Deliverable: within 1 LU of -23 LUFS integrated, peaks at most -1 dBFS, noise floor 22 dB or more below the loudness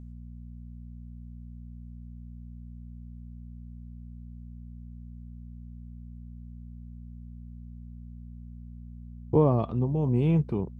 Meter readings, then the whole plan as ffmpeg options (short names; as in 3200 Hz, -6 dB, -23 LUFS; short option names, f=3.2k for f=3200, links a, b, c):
hum 60 Hz; harmonics up to 240 Hz; hum level -41 dBFS; loudness -25.5 LUFS; peak -10.5 dBFS; loudness target -23.0 LUFS
-> -af "bandreject=f=60:t=h:w=4,bandreject=f=120:t=h:w=4,bandreject=f=180:t=h:w=4,bandreject=f=240:t=h:w=4"
-af "volume=2.5dB"